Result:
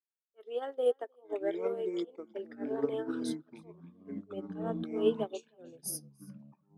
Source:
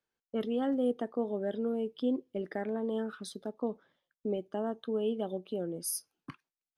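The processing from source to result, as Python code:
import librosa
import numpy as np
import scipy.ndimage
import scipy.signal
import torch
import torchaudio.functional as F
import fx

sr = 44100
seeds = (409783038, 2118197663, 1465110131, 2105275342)

p1 = fx.auto_swell(x, sr, attack_ms=154.0)
p2 = scipy.signal.sosfilt(scipy.signal.cheby1(4, 1.0, 380.0, 'highpass', fs=sr, output='sos'), p1)
p3 = fx.echo_pitch(p2, sr, ms=749, semitones=-6, count=3, db_per_echo=-3.0)
p4 = p3 + fx.echo_single(p3, sr, ms=308, db=-15.0, dry=0)
p5 = fx.upward_expand(p4, sr, threshold_db=-48.0, expansion=2.5)
y = p5 * 10.0 ** (7.5 / 20.0)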